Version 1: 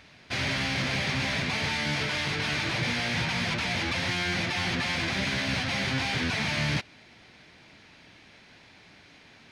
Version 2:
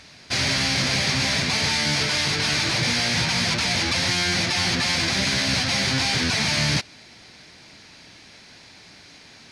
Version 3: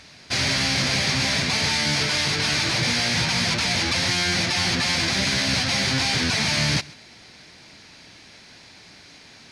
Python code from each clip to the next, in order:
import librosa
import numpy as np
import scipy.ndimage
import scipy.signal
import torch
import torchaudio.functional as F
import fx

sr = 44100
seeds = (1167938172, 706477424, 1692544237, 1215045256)

y1 = fx.band_shelf(x, sr, hz=6900.0, db=9.0, octaves=1.7)
y1 = F.gain(torch.from_numpy(y1), 4.5).numpy()
y2 = y1 + 10.0 ** (-22.0 / 20.0) * np.pad(y1, (int(131 * sr / 1000.0), 0))[:len(y1)]